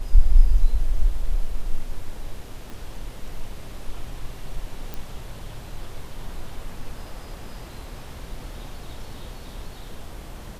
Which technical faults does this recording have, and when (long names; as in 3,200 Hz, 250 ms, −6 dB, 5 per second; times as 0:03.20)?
0:02.70: click
0:04.94: click